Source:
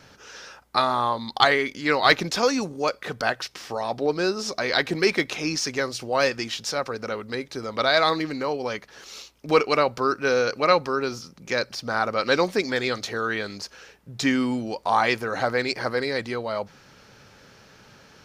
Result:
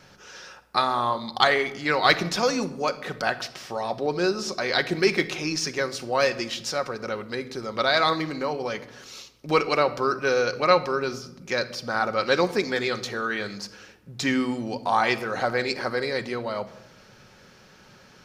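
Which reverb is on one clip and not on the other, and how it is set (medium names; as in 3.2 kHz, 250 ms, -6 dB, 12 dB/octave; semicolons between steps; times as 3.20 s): simulated room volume 3200 m³, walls furnished, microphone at 1 m; trim -1.5 dB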